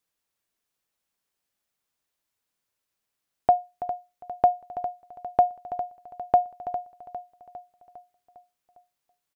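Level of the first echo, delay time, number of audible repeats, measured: −13.0 dB, 404 ms, 5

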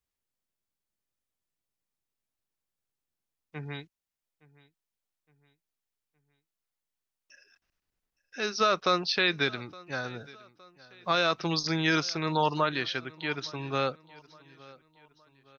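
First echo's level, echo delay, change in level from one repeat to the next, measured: −22.5 dB, 865 ms, −7.0 dB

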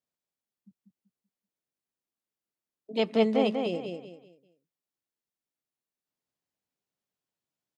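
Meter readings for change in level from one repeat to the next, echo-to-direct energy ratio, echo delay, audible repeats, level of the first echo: −10.0 dB, −4.5 dB, 192 ms, 4, −5.0 dB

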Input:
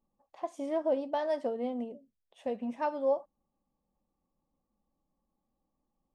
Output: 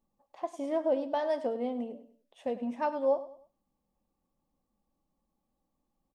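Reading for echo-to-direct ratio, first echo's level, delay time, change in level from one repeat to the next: −14.5 dB, −15.0 dB, 100 ms, −9.0 dB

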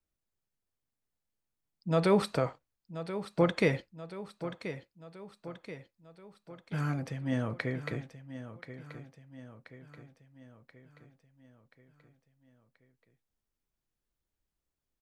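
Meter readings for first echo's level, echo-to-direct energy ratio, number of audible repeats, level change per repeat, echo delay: −12.0 dB, −10.5 dB, 5, −5.5 dB, 1,031 ms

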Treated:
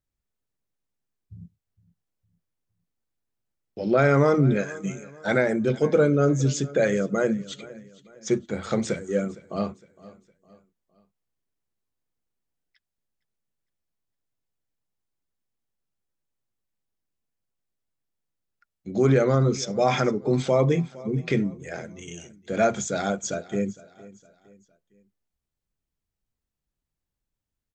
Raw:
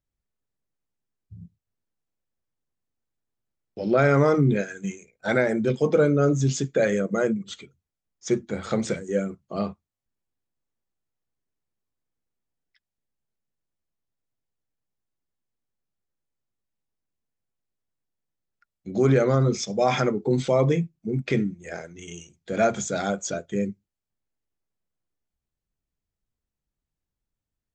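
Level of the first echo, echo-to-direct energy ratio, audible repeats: −20.0 dB, −19.0 dB, 2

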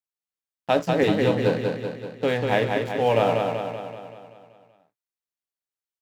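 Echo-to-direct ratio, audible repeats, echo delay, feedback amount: −2.5 dB, 7, 191 ms, 57%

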